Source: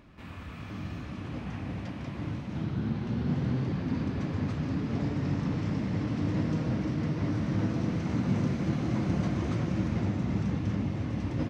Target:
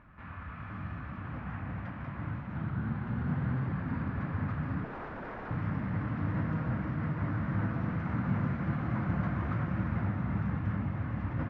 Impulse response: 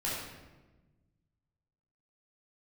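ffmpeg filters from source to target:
-filter_complex "[0:a]asplit=2[a][b];[b]acrusher=bits=5:mode=log:mix=0:aa=0.000001,volume=-10dB[c];[a][c]amix=inputs=2:normalize=0,equalizer=f=370:w=0.95:g=-9.5,asettb=1/sr,asplit=3[d][e][f];[d]atrim=end=4.844[g];[e]atrim=start=4.84:end=5.51,asetpts=PTS-STARTPTS,afade=t=in:d=0.004:c=qsin,afade=t=out:st=0.666:d=0.004:c=qsin,aeval=exprs='0.0178*(abs(mod(val(0)/0.0178+3,4)-2)-1)':c=same[h];[f]atrim=start=5.506[i];[g][h]acrossfade=d=0.004:c1=hsin:c2=qsin[j];[j][i]acrossfade=d=0.004:c1=qsin:c2=hsin,lowpass=f=1.5k:t=q:w=2,volume=-2.5dB"

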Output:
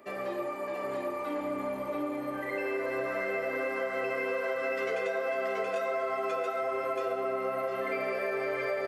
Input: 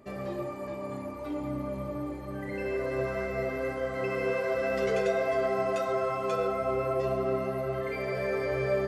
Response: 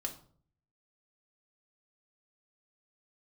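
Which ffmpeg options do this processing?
-filter_complex "[0:a]asplit=2[a][b];[b]aecho=0:1:680:0.708[c];[a][c]amix=inputs=2:normalize=0,crystalizer=i=6:c=0,acrossover=split=260 2700:gain=0.112 1 0.126[d][e][f];[d][e][f]amix=inputs=3:normalize=0,acompressor=threshold=-30dB:ratio=6,volume=1.5dB"

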